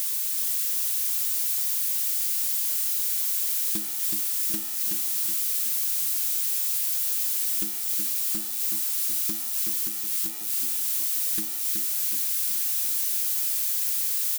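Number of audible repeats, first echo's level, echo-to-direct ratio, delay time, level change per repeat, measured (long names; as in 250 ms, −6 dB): 4, −5.0 dB, −4.0 dB, 373 ms, −6.0 dB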